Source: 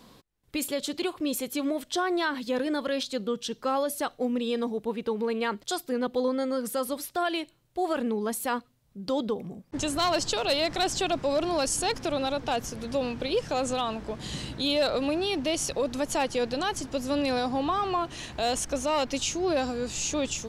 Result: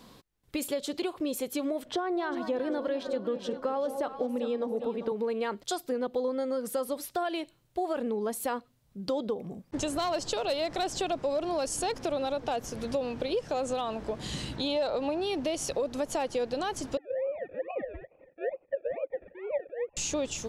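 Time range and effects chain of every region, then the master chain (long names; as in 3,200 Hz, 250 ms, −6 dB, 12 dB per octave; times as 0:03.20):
0:01.85–0:05.12: high-shelf EQ 3,500 Hz −11.5 dB + delay that swaps between a low-pass and a high-pass 198 ms, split 820 Hz, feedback 67%, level −9 dB + multiband upward and downward compressor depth 40%
0:14.56–0:15.21: low-pass filter 7,600 Hz + parametric band 880 Hz +7.5 dB 0.33 octaves
0:16.97–0:19.97: three sine waves on the formant tracks + sample-and-hold swept by an LFO 34×, swing 60% 2.3 Hz + formant resonators in series e
whole clip: dynamic equaliser 550 Hz, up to +7 dB, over −40 dBFS, Q 0.87; downward compressor 3 to 1, threshold −30 dBFS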